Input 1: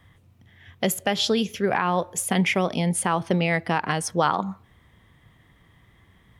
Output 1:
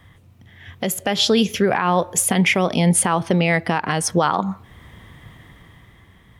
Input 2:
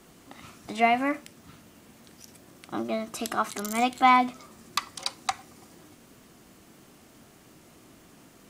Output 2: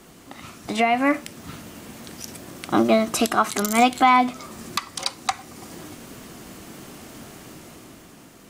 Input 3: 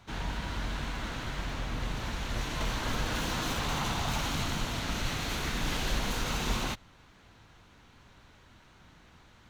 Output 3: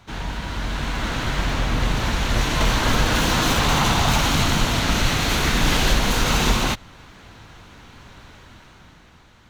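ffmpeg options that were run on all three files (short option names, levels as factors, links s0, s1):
-af "alimiter=limit=0.106:level=0:latency=1:release=453,dynaudnorm=f=140:g=13:m=2.24,volume=2"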